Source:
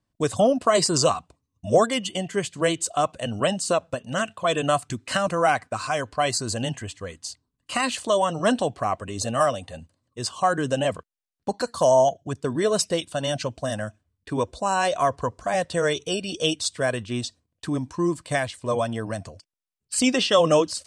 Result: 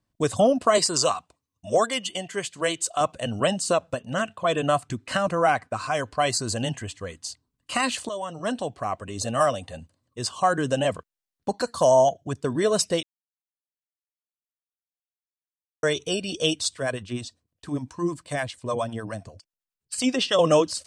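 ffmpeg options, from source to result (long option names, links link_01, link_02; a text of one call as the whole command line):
ffmpeg -i in.wav -filter_complex "[0:a]asettb=1/sr,asplit=3[link_01][link_02][link_03];[link_01]atrim=end=0.784[link_04];[link_02]atrim=start=0.78:end=3.01,asetpts=PTS-STARTPTS,afade=type=in:duration=0.004:curve=qsin,afade=type=out:start_time=2.226:duration=0.004:curve=qsin,lowshelf=frequency=360:gain=-10.5[link_05];[link_03]atrim=start=3.006[link_06];[link_04][link_05]acrossfade=duration=0.004:curve1=hsin:curve2=qsin[link_07];[link_07][link_06]acrossfade=duration=0.004:curve1=qsin:curve2=hsin,asettb=1/sr,asplit=3[link_08][link_09][link_10];[link_08]atrim=end=4.014[link_11];[link_09]atrim=start=4.01:end=5.95,asetpts=PTS-STARTPTS,afade=type=in:duration=0.004:curve=qsin,afade=type=out:start_time=1.936:duration=0.004:curve=qsin,highshelf=frequency=3300:gain=-6[link_12];[link_10]atrim=start=5.946[link_13];[link_11][link_12]acrossfade=duration=0.004:curve1=hsin:curve2=qsin[link_14];[link_14][link_13]acrossfade=duration=0.004:curve1=qsin:curve2=hsin,asettb=1/sr,asplit=3[link_15][link_16][link_17];[link_15]atrim=end=16.744[link_18];[link_16]atrim=start=16.74:end=20.39,asetpts=PTS-STARTPTS,afade=type=in:duration=0.004:curve=qsin,afade=type=out:start_time=3.646:duration=0.004:curve=qsin,acrossover=split=550[link_19][link_20];[link_19]aeval=exprs='val(0)*(1-0.7/2+0.7/2*cos(2*PI*9.9*n/s))':channel_layout=same[link_21];[link_20]aeval=exprs='val(0)*(1-0.7/2-0.7/2*cos(2*PI*9.9*n/s))':channel_layout=same[link_22];[link_21][link_22]amix=inputs=2:normalize=0[link_23];[link_17]atrim=start=20.386[link_24];[link_18][link_23]acrossfade=duration=0.004:curve1=hsin:curve2=qsin[link_25];[link_25][link_24]acrossfade=duration=0.004:curve1=qsin:curve2=hsin,asplit=4[link_26][link_27][link_28][link_29];[link_26]atrim=end=8.09,asetpts=PTS-STARTPTS,afade=type=out:start_time=8.086:duration=0.004:curve=hsin:silence=0.237137[link_30];[link_27]atrim=start=8.09:end=13.03,asetpts=PTS-STARTPTS,afade=type=in:duration=1.41:silence=0.237137,afade=type=out:start_time=4.936:duration=0.004:curve=hsin[link_31];[link_28]atrim=start=13.03:end=15.83,asetpts=PTS-STARTPTS,volume=0[link_32];[link_29]atrim=start=15.83,asetpts=PTS-STARTPTS,afade=type=in:duration=0.004:curve=hsin[link_33];[link_30][link_31][link_32][link_33]concat=n=4:v=0:a=1" out.wav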